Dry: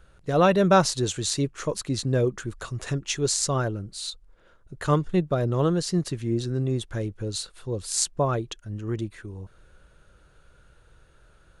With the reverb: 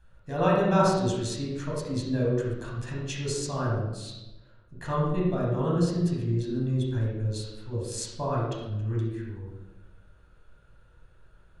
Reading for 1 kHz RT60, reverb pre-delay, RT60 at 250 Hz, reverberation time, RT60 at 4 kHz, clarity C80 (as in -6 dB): 0.95 s, 15 ms, 1.2 s, 1.1 s, 0.70 s, 3.0 dB